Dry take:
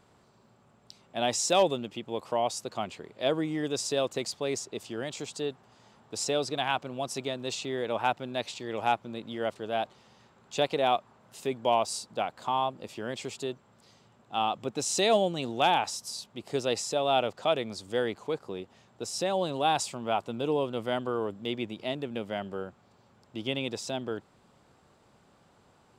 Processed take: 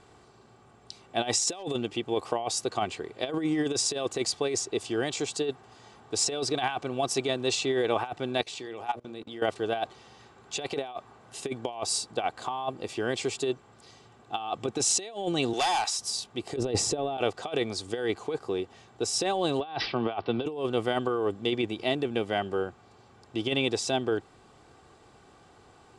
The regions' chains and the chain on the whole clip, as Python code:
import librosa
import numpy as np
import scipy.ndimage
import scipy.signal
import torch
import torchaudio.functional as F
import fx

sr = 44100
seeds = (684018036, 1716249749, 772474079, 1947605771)

y = fx.chain(x, sr, fx.highpass(hz=94.0, slope=12),
    fx.hum_notches(base_hz=60, count=10),
    fx.level_steps(step_db=23), at=(8.41, 9.42))
y = fx.chain(y, sr, fx.highpass(hz=940.0, slope=6),
    fx.clip_hard(threshold_db=-30.5),
    fx.band_squash(depth_pct=70), at=(15.53, 15.99))
y = fx.chain(y, sr, fx.tilt_shelf(db=7.5, hz=730.0),
    fx.over_compress(threshold_db=-31.0, ratio=-0.5), at=(16.56, 17.18))
y = fx.chain(y, sr, fx.peak_eq(hz=6300.0, db=-11.5, octaves=0.52),
    fx.resample_bad(factor=4, down='none', up='filtered'),
    fx.band_squash(depth_pct=70), at=(19.6, 20.46))
y = scipy.signal.sosfilt(scipy.signal.butter(12, 11000.0, 'lowpass', fs=sr, output='sos'), y)
y = y + 0.45 * np.pad(y, (int(2.6 * sr / 1000.0), 0))[:len(y)]
y = fx.over_compress(y, sr, threshold_db=-30.0, ratio=-0.5)
y = F.gain(torch.from_numpy(y), 3.0).numpy()